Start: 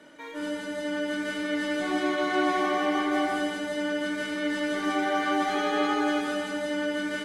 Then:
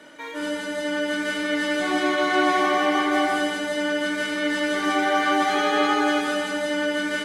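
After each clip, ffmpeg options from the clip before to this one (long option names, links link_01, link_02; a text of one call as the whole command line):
ffmpeg -i in.wav -af "lowshelf=frequency=480:gain=-5.5,volume=7dB" out.wav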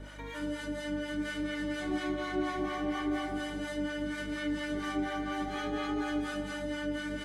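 ffmpeg -i in.wav -filter_complex "[0:a]acrossover=split=280[link_01][link_02];[link_02]acompressor=threshold=-39dB:ratio=2.5[link_03];[link_01][link_03]amix=inputs=2:normalize=0,aeval=exprs='val(0)+0.00708*(sin(2*PI*50*n/s)+sin(2*PI*2*50*n/s)/2+sin(2*PI*3*50*n/s)/3+sin(2*PI*4*50*n/s)/4+sin(2*PI*5*50*n/s)/5)':channel_layout=same,acrossover=split=680[link_04][link_05];[link_04]aeval=exprs='val(0)*(1-0.7/2+0.7/2*cos(2*PI*4.2*n/s))':channel_layout=same[link_06];[link_05]aeval=exprs='val(0)*(1-0.7/2-0.7/2*cos(2*PI*4.2*n/s))':channel_layout=same[link_07];[link_06][link_07]amix=inputs=2:normalize=0" out.wav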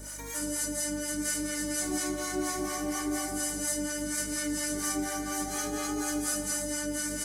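ffmpeg -i in.wav -af "aexciter=amount=15.5:drive=5.2:freq=5200" out.wav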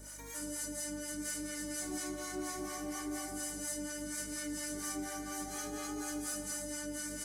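ffmpeg -i in.wav -af "asoftclip=type=tanh:threshold=-20.5dB,volume=-7.5dB" out.wav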